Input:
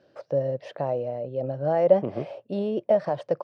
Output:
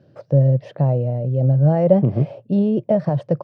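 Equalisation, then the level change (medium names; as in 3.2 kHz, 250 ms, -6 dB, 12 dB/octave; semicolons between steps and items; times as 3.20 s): peaking EQ 130 Hz +13.5 dB 1.5 oct; bass shelf 300 Hz +9.5 dB; -1.0 dB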